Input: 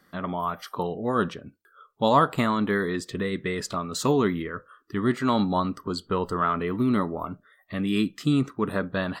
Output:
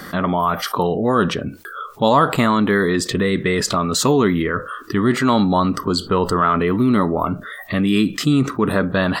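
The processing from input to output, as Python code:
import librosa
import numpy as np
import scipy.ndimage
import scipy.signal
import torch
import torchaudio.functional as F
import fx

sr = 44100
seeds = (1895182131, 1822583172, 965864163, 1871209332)

y = fx.env_flatten(x, sr, amount_pct=50)
y = F.gain(torch.from_numpy(y), 4.0).numpy()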